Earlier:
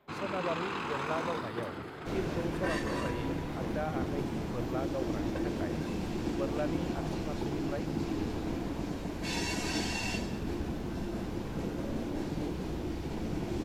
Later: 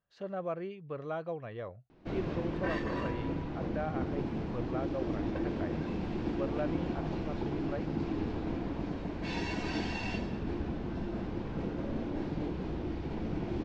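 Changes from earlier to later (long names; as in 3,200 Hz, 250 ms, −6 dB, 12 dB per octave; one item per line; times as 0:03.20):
first sound: muted
master: add high-frequency loss of the air 200 metres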